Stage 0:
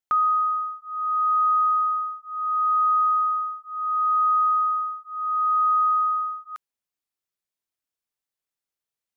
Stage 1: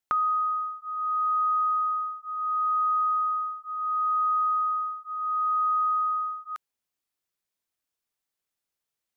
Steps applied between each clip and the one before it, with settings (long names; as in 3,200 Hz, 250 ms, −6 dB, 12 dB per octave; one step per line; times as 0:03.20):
dynamic equaliser 1,200 Hz, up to −5 dB, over −35 dBFS
in parallel at +1 dB: downward compressor, threshold −28 dBFS, peak gain reduction 5 dB
on the sum: level −4 dB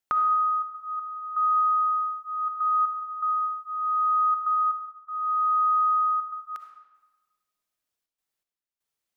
gate pattern "xxxxx.xx...xxxx" 121 BPM −12 dB
convolution reverb RT60 1.2 s, pre-delay 20 ms, DRR 6 dB